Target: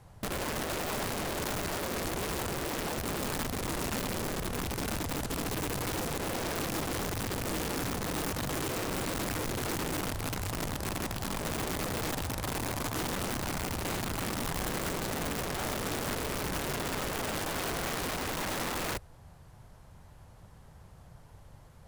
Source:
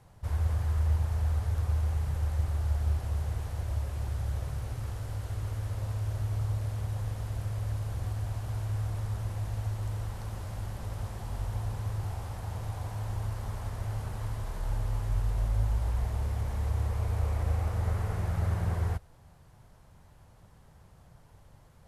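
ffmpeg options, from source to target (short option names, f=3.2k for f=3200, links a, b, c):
-af "aeval=exprs='(mod(39.8*val(0)+1,2)-1)/39.8':c=same,volume=3dB"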